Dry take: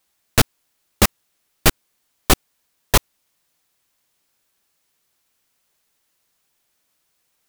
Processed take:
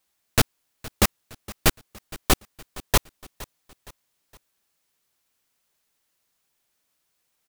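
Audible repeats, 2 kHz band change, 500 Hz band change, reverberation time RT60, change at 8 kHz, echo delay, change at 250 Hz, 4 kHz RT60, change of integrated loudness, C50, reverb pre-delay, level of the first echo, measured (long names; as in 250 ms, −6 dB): 3, −4.5 dB, −4.5 dB, no reverb audible, −4.5 dB, 465 ms, −4.5 dB, no reverb audible, −4.5 dB, no reverb audible, no reverb audible, −19.5 dB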